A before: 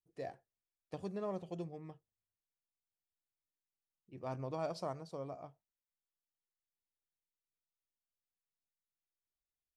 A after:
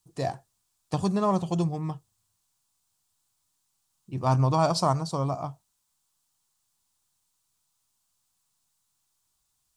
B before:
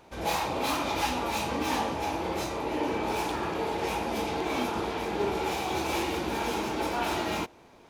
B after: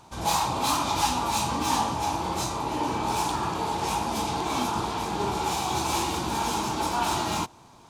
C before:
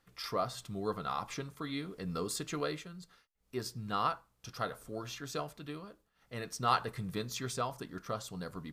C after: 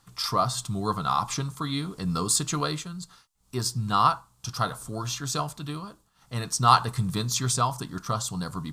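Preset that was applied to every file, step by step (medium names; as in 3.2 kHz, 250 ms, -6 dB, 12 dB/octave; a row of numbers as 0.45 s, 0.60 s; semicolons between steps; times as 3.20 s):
graphic EQ 125/500/1000/2000/4000/8000 Hz +7/-8/+8/-7/+3/+9 dB; normalise loudness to -27 LUFS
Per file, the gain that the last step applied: +16.0 dB, +1.5 dB, +8.0 dB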